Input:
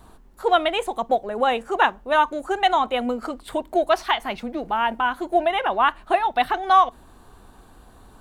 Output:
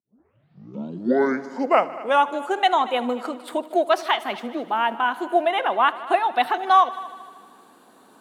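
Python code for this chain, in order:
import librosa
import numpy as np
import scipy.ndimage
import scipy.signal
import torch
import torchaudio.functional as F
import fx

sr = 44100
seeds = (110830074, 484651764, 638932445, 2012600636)

p1 = fx.tape_start_head(x, sr, length_s=2.34)
p2 = scipy.signal.sosfilt(scipy.signal.butter(4, 210.0, 'highpass', fs=sr, output='sos'), p1)
y = p2 + fx.echo_heads(p2, sr, ms=77, heads='all three', feedback_pct=51, wet_db=-21.5, dry=0)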